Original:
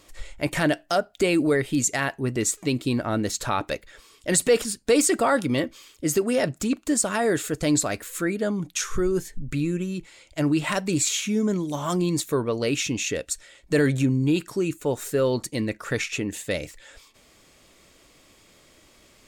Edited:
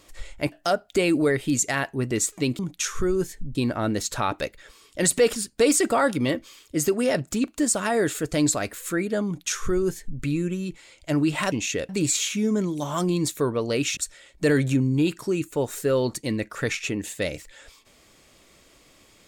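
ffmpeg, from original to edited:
-filter_complex "[0:a]asplit=7[s0][s1][s2][s3][s4][s5][s6];[s0]atrim=end=0.522[s7];[s1]atrim=start=0.768:end=2.842[s8];[s2]atrim=start=8.548:end=9.512[s9];[s3]atrim=start=2.838:end=10.812[s10];[s4]atrim=start=12.888:end=13.262[s11];[s5]atrim=start=10.808:end=12.892[s12];[s6]atrim=start=13.258[s13];[s7][s8]acrossfade=d=0.004:c1=hsin:c2=hsin[s14];[s14][s9]acrossfade=d=0.004:c1=hsin:c2=hsin[s15];[s15][s10]acrossfade=d=0.004:c1=hsin:c2=hsin[s16];[s16][s11]acrossfade=d=0.004:c1=hsin:c2=hsin[s17];[s17][s12]acrossfade=d=0.004:c1=hsin:c2=hsin[s18];[s18][s13]acrossfade=d=0.004:c1=hsin:c2=hsin"

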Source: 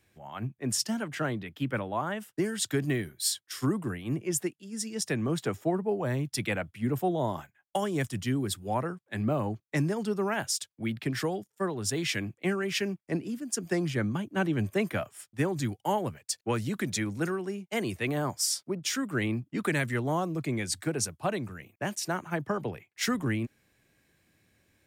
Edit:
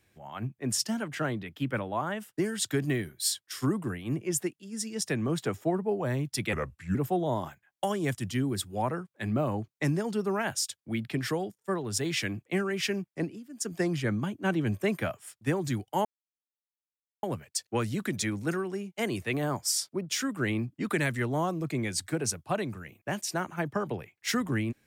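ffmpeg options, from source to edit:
-filter_complex "[0:a]asplit=6[s0][s1][s2][s3][s4][s5];[s0]atrim=end=6.534[s6];[s1]atrim=start=6.53:end=6.87,asetpts=PTS-STARTPTS,asetrate=35721,aresample=44100,atrim=end_sample=18511,asetpts=PTS-STARTPTS[s7];[s2]atrim=start=6.866:end=13.36,asetpts=PTS-STARTPTS,afade=t=out:st=6.244:d=0.25:silence=0.199526[s8];[s3]atrim=start=13.36:end=13.37,asetpts=PTS-STARTPTS,volume=0.2[s9];[s4]atrim=start=13.37:end=15.97,asetpts=PTS-STARTPTS,afade=t=in:d=0.25:silence=0.199526,afade=t=out:st=2.596:d=0.004:c=hsin,apad=pad_dur=1.18[s10];[s5]atrim=start=15.97,asetpts=PTS-STARTPTS,afade=t=in:d=0.004:c=hsin[s11];[s6][s7]acrossfade=d=0.004:c1=hsin:c2=hsin[s12];[s8][s9][s10][s11]concat=n=4:v=0:a=1[s13];[s12][s13]acrossfade=d=0.004:c1=hsin:c2=hsin"

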